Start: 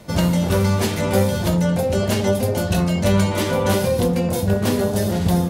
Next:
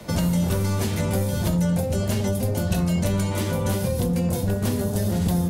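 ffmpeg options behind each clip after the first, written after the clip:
-filter_complex "[0:a]acrossover=split=180|6600[a][b][c];[a]acompressor=threshold=-23dB:ratio=4[d];[b]acompressor=threshold=-32dB:ratio=4[e];[c]acompressor=threshold=-39dB:ratio=4[f];[d][e][f]amix=inputs=3:normalize=0,acrossover=split=150[g][h];[g]aeval=exprs='clip(val(0),-1,0.0282)':c=same[i];[i][h]amix=inputs=2:normalize=0,volume=3dB"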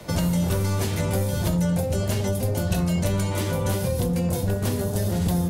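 -af "equalizer=f=220:w=4.8:g=-6"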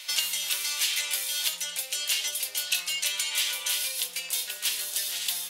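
-af "highpass=f=2.9k:t=q:w=1.9,volume=6dB"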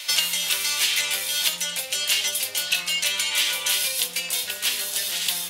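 -filter_complex "[0:a]lowshelf=f=250:g=11.5,acrossover=split=380|3600[a][b][c];[c]alimiter=limit=-20dB:level=0:latency=1:release=491[d];[a][b][d]amix=inputs=3:normalize=0,volume=7dB"

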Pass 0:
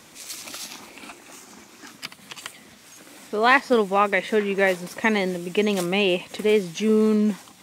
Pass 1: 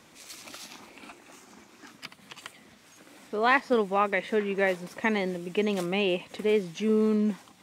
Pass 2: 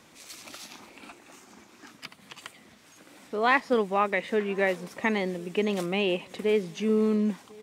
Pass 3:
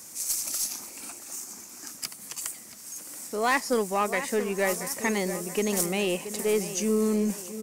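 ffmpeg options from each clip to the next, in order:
-af "highshelf=f=4.6k:g=-7,volume=-5dB"
-filter_complex "[0:a]asplit=2[a][b];[b]adelay=1050,volume=-24dB,highshelf=f=4k:g=-23.6[c];[a][c]amix=inputs=2:normalize=0"
-filter_complex "[0:a]aexciter=amount=12.3:drive=2.9:freq=5.2k,asplit=2[a][b];[b]adelay=678,lowpass=f=2.4k:p=1,volume=-12dB,asplit=2[c][d];[d]adelay=678,lowpass=f=2.4k:p=1,volume=0.49,asplit=2[e][f];[f]adelay=678,lowpass=f=2.4k:p=1,volume=0.49,asplit=2[g][h];[h]adelay=678,lowpass=f=2.4k:p=1,volume=0.49,asplit=2[i][j];[j]adelay=678,lowpass=f=2.4k:p=1,volume=0.49[k];[a][c][e][g][i][k]amix=inputs=6:normalize=0,aeval=exprs='(tanh(5.62*val(0)+0.15)-tanh(0.15))/5.62':c=same"

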